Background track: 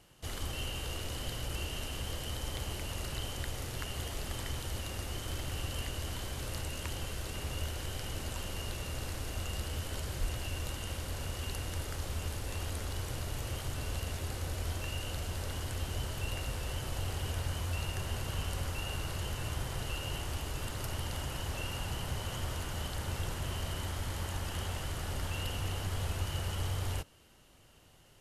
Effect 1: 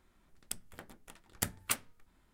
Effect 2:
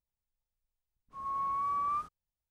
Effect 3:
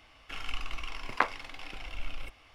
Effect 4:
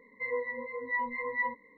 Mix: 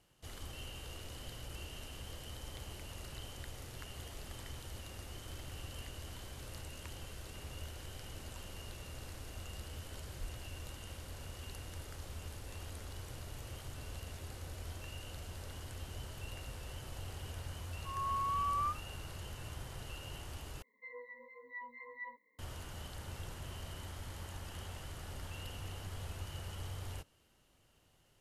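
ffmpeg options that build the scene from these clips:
ffmpeg -i bed.wav -i cue0.wav -i cue1.wav -i cue2.wav -i cue3.wav -filter_complex "[0:a]volume=-9dB[link_01];[4:a]aemphasis=mode=production:type=bsi[link_02];[link_01]asplit=2[link_03][link_04];[link_03]atrim=end=20.624[link_05];[link_02]atrim=end=1.77,asetpts=PTS-STARTPTS,volume=-16dB[link_06];[link_04]atrim=start=22.386[link_07];[2:a]atrim=end=2.5,asetpts=PTS-STARTPTS,volume=-2.5dB,afade=type=in:duration=0.004:curve=hsin,afade=type=out:start_time=2.496:duration=0.004:curve=hsin,adelay=16710[link_08];[link_05][link_06]acrossfade=duration=0.004:curve1=hsin:curve2=hsin[link_09];[link_09][link_07]acrossfade=duration=0.004:curve1=hsin:curve2=hsin[link_10];[link_10][link_08]amix=inputs=2:normalize=0" out.wav

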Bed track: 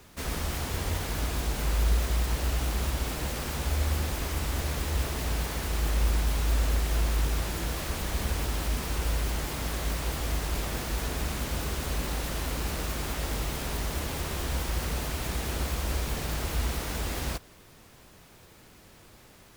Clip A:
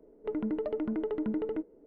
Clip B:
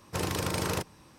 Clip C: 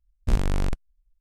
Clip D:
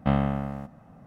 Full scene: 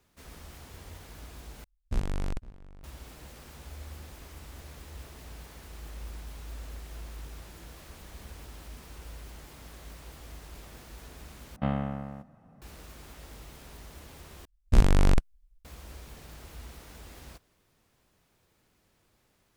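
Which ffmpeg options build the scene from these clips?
ffmpeg -i bed.wav -i cue0.wav -i cue1.wav -i cue2.wav -i cue3.wav -filter_complex "[3:a]asplit=2[link_01][link_02];[0:a]volume=-16dB[link_03];[link_01]asplit=2[link_04][link_05];[link_05]adelay=507.3,volume=-19dB,highshelf=frequency=4000:gain=-11.4[link_06];[link_04][link_06]amix=inputs=2:normalize=0[link_07];[link_02]dynaudnorm=framelen=140:gausssize=3:maxgain=9dB[link_08];[link_03]asplit=4[link_09][link_10][link_11][link_12];[link_09]atrim=end=1.644[link_13];[link_07]atrim=end=1.2,asetpts=PTS-STARTPTS,volume=-7.5dB[link_14];[link_10]atrim=start=2.836:end=11.564[link_15];[4:a]atrim=end=1.06,asetpts=PTS-STARTPTS,volume=-6dB[link_16];[link_11]atrim=start=12.616:end=14.454[link_17];[link_08]atrim=end=1.2,asetpts=PTS-STARTPTS,volume=-4.5dB[link_18];[link_12]atrim=start=15.646[link_19];[link_13][link_14]acrossfade=duration=0.004:curve1=hsin:curve2=hsin[link_20];[link_20][link_15]acrossfade=duration=0.004:curve1=hsin:curve2=hsin[link_21];[link_21][link_16]acrossfade=duration=0.004:curve1=hsin:curve2=hsin[link_22];[link_22][link_17]acrossfade=duration=0.004:curve1=hsin:curve2=hsin[link_23];[link_23][link_18]acrossfade=duration=0.004:curve1=hsin:curve2=hsin[link_24];[link_24][link_19]acrossfade=duration=0.004:curve1=hsin:curve2=hsin" out.wav

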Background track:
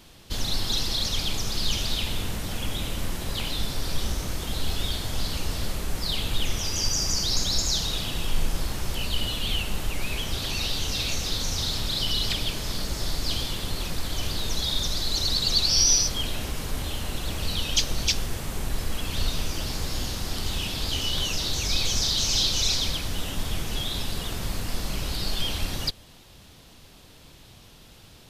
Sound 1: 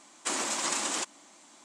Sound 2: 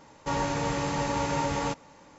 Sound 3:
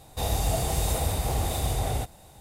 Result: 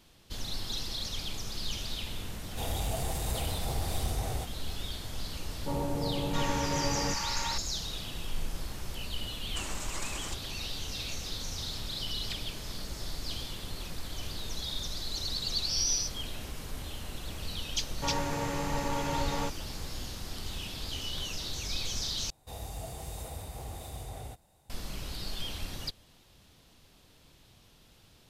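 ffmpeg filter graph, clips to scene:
ffmpeg -i bed.wav -i cue0.wav -i cue1.wav -i cue2.wav -filter_complex "[3:a]asplit=2[link_01][link_02];[2:a]asplit=2[link_03][link_04];[0:a]volume=-9.5dB[link_05];[link_01]asoftclip=type=tanh:threshold=-20dB[link_06];[link_03]acrossover=split=860[link_07][link_08];[link_08]adelay=670[link_09];[link_07][link_09]amix=inputs=2:normalize=0[link_10];[link_05]asplit=2[link_11][link_12];[link_11]atrim=end=22.304[link_13];[link_02]atrim=end=2.4,asetpts=PTS-STARTPTS,volume=-14.5dB[link_14];[link_12]atrim=start=24.696[link_15];[link_06]atrim=end=2.4,asetpts=PTS-STARTPTS,volume=-6dB,afade=type=in:duration=0.004:curve=hsin,afade=type=out:start_time=2.396:duration=0.004:curve=hsin,adelay=2400[link_16];[link_10]atrim=end=2.18,asetpts=PTS-STARTPTS,volume=-2dB,afade=type=in:duration=0.004:curve=hsin,afade=type=out:start_time=2.176:duration=0.004:curve=hsin,adelay=5400[link_17];[1:a]atrim=end=1.64,asetpts=PTS-STARTPTS,volume=-9.5dB,afade=type=in:duration=0.004:curve=hsin,afade=type=out:start_time=1.636:duration=0.004:curve=hsin,adelay=410130S[link_18];[link_04]atrim=end=2.18,asetpts=PTS-STARTPTS,volume=-4.5dB,afade=type=in:duration=0.004:curve=hsin,afade=type=out:start_time=2.176:duration=0.004:curve=hsin,adelay=17760[link_19];[link_13][link_14]acrossfade=duration=0.004:curve1=hsin:curve2=hsin[link_20];[link_20][link_15]acrossfade=duration=0.004:curve1=hsin:curve2=hsin[link_21];[link_21][link_16][link_17][link_18][link_19]amix=inputs=5:normalize=0" out.wav

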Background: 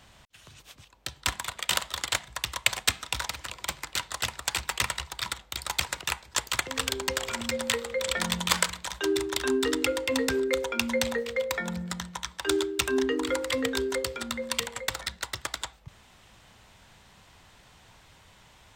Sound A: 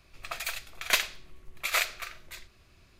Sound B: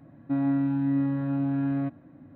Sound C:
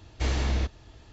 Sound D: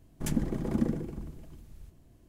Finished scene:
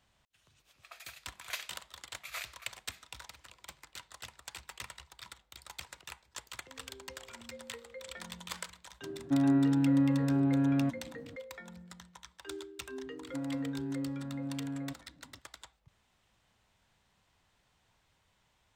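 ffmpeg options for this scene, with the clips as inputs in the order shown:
ffmpeg -i bed.wav -i cue0.wav -i cue1.wav -filter_complex "[2:a]asplit=2[link_01][link_02];[0:a]volume=-17dB[link_03];[1:a]highpass=520,atrim=end=2.99,asetpts=PTS-STARTPTS,volume=-14.5dB,afade=type=in:duration=0.004:curve=hsin,afade=type=out:start_time=2.986:duration=0.004:curve=hsin,adelay=600[link_04];[link_01]atrim=end=2.35,asetpts=PTS-STARTPTS,volume=-1dB,afade=type=in:duration=0.004:curve=hsin,afade=type=out:start_time=2.346:duration=0.004:curve=hsin,adelay=9010[link_05];[link_02]atrim=end=2.35,asetpts=PTS-STARTPTS,volume=-11.5dB,afade=type=in:duration=0.004:curve=hsin,afade=type=out:start_time=2.346:duration=0.004:curve=hsin,adelay=13040[link_06];[link_03][link_04][link_05][link_06]amix=inputs=4:normalize=0" out.wav

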